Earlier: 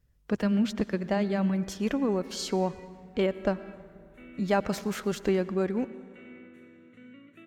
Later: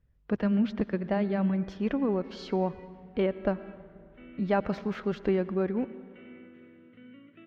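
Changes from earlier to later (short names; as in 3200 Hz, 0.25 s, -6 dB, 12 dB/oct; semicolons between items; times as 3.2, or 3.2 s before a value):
background: remove notch 3100 Hz, Q 7.5; master: add air absorption 290 m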